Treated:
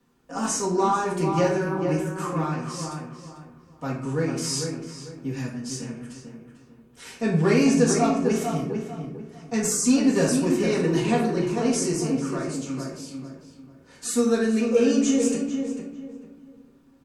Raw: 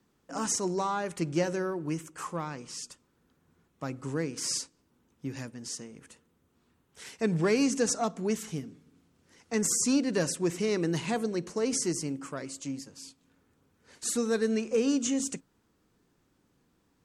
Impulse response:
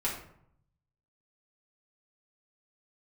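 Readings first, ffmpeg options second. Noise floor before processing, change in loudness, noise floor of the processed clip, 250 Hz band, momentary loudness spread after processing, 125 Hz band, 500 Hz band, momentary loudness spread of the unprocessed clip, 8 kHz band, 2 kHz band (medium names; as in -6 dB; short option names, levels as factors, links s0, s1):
-71 dBFS, +6.5 dB, -54 dBFS, +8.0 dB, 18 LU, +9.0 dB, +7.0 dB, 15 LU, +3.0 dB, +6.0 dB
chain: -filter_complex "[0:a]bandreject=f=2000:w=16,asplit=2[s0][s1];[s1]adelay=446,lowpass=f=2000:p=1,volume=0.531,asplit=2[s2][s3];[s3]adelay=446,lowpass=f=2000:p=1,volume=0.31,asplit=2[s4][s5];[s5]adelay=446,lowpass=f=2000:p=1,volume=0.31,asplit=2[s6][s7];[s7]adelay=446,lowpass=f=2000:p=1,volume=0.31[s8];[s0][s2][s4][s6][s8]amix=inputs=5:normalize=0[s9];[1:a]atrim=start_sample=2205[s10];[s9][s10]afir=irnorm=-1:irlink=0"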